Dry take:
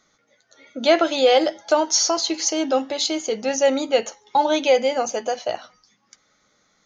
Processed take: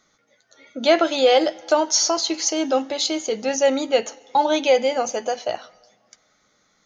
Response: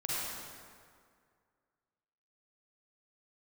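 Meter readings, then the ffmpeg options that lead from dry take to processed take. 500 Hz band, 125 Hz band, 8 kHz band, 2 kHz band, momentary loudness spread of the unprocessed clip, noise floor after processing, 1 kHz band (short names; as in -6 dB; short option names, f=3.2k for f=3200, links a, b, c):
0.0 dB, n/a, 0.0 dB, 0.0 dB, 9 LU, -65 dBFS, 0.0 dB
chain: -filter_complex "[0:a]asplit=2[a][b];[1:a]atrim=start_sample=2205,asetrate=61740,aresample=44100,adelay=93[c];[b][c]afir=irnorm=-1:irlink=0,volume=-28dB[d];[a][d]amix=inputs=2:normalize=0"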